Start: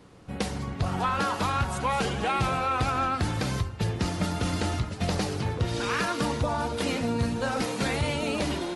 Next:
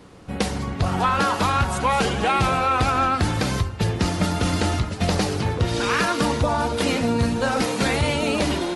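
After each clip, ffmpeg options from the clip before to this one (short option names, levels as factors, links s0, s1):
-af "equalizer=f=130:t=o:w=0.39:g=-3.5,volume=2.11"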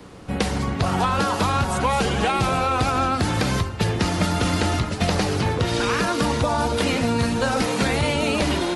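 -filter_complex "[0:a]acrossover=split=140|850|3400[s0][s1][s2][s3];[s0]acompressor=threshold=0.0355:ratio=4[s4];[s1]acompressor=threshold=0.0501:ratio=4[s5];[s2]acompressor=threshold=0.0316:ratio=4[s6];[s3]acompressor=threshold=0.0158:ratio=4[s7];[s4][s5][s6][s7]amix=inputs=4:normalize=0,volume=1.58"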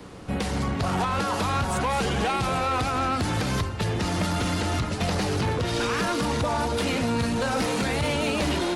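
-af "alimiter=limit=0.251:level=0:latency=1:release=179,asoftclip=type=tanh:threshold=0.106"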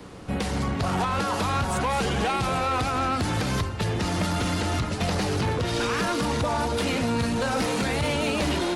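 -af anull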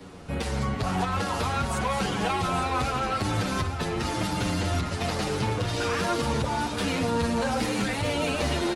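-filter_complex "[0:a]aecho=1:1:854:0.335,asplit=2[s0][s1];[s1]adelay=7.9,afreqshift=-0.86[s2];[s0][s2]amix=inputs=2:normalize=1,volume=1.12"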